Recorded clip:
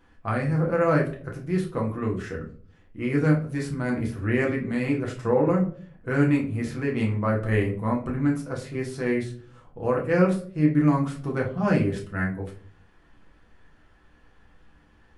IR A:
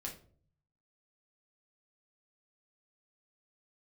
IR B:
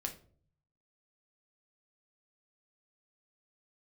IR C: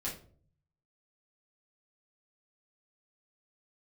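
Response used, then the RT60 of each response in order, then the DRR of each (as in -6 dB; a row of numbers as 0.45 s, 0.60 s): A; 0.50 s, 0.50 s, 0.50 s; -1.5 dB, 3.0 dB, -6.5 dB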